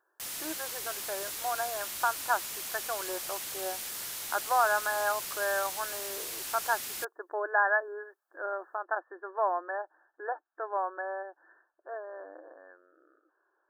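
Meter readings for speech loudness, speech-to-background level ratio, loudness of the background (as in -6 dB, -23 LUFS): -33.0 LUFS, 2.5 dB, -35.5 LUFS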